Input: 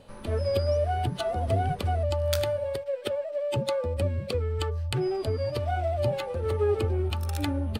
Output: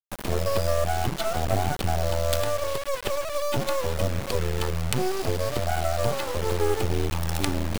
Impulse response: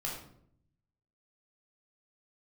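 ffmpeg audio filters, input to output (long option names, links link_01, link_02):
-filter_complex "[0:a]asplit=2[link_01][link_02];[link_02]acompressor=threshold=-33dB:ratio=16,volume=-2dB[link_03];[link_01][link_03]amix=inputs=2:normalize=0,acrusher=bits=3:dc=4:mix=0:aa=0.000001,volume=3.5dB"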